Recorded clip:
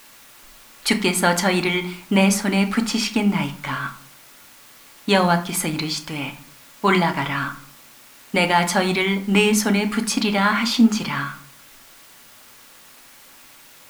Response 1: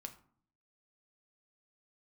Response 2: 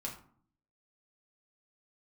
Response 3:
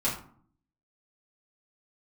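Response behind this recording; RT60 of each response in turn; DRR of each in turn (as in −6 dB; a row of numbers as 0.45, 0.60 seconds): 1; 0.55, 0.55, 0.50 seconds; 5.5, −2.5, −9.5 decibels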